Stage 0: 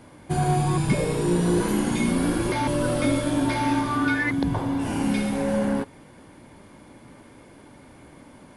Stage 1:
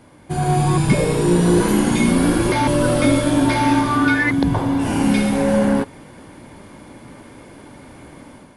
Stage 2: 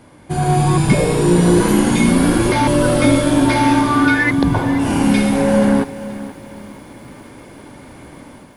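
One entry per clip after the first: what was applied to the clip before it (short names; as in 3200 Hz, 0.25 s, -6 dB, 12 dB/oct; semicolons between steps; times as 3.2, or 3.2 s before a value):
AGC gain up to 7.5 dB
lo-fi delay 0.48 s, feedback 35%, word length 7-bit, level -15 dB; gain +2.5 dB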